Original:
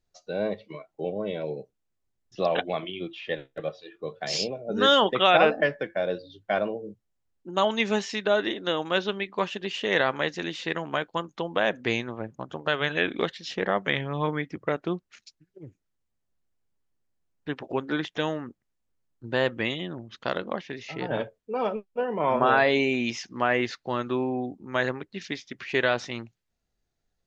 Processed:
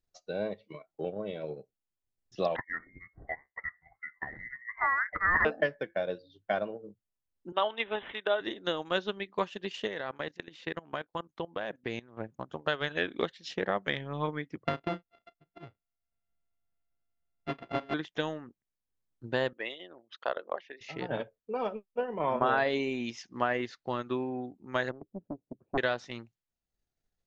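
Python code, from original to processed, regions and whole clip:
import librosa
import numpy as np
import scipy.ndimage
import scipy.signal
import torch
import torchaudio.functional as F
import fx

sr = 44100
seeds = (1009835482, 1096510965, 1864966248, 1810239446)

y = fx.chain(x, sr, fx.highpass(hz=520.0, slope=24),
    fx.freq_invert(carrier_hz=2500), at=(2.56, 5.45))
y = fx.chain(y, sr, fx.highpass(hz=430.0, slope=12),
    fx.high_shelf(hz=5000.0, db=3.0),
    fx.resample_bad(factor=6, down='none', up='filtered'), at=(7.52, 8.41))
y = fx.chain(y, sr, fx.lowpass(hz=3700.0, slope=6),
    fx.level_steps(step_db=15), at=(9.87, 12.17))
y = fx.chain(y, sr, fx.sample_sort(block=64),
    fx.lowpass(hz=3400.0, slope=24),
    fx.doubler(ms=34.0, db=-13.5), at=(14.65, 17.94))
y = fx.chain(y, sr, fx.envelope_sharpen(power=1.5),
    fx.highpass(hz=590.0, slope=12),
    fx.peak_eq(hz=760.0, db=4.0, octaves=1.7), at=(19.53, 20.81))
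y = fx.chain(y, sr, fx.cheby2_lowpass(hz=1800.0, order=4, stop_db=50),
    fx.doppler_dist(depth_ms=0.97), at=(24.91, 25.78))
y = fx.dynamic_eq(y, sr, hz=2400.0, q=2.9, threshold_db=-39.0, ratio=4.0, max_db=-4)
y = fx.transient(y, sr, attack_db=4, sustain_db=-5)
y = F.gain(torch.from_numpy(y), -6.5).numpy()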